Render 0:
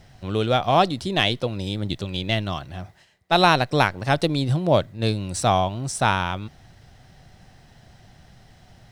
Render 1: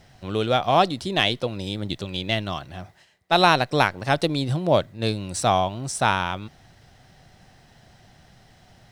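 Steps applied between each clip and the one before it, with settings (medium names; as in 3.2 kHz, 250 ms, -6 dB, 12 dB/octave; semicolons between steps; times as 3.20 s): bass shelf 140 Hz -6 dB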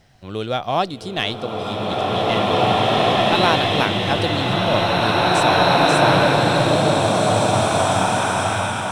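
swelling reverb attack 2450 ms, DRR -8 dB; trim -2 dB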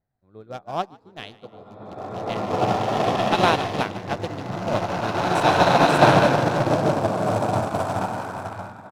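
local Wiener filter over 15 samples; frequency-shifting echo 147 ms, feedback 36%, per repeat +79 Hz, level -11 dB; upward expansion 2.5:1, over -31 dBFS; trim +3 dB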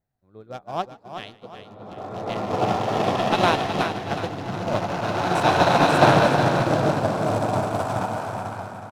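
feedback delay 368 ms, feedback 40%, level -8.5 dB; trim -1 dB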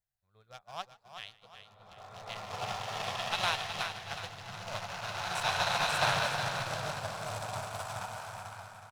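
amplifier tone stack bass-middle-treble 10-0-10; trim -2.5 dB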